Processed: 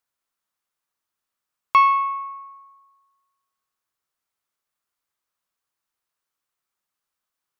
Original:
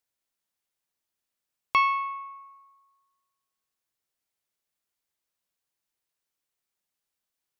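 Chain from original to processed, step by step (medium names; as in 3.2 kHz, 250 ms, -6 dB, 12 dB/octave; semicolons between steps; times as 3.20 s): peaking EQ 1.2 kHz +9 dB 0.82 oct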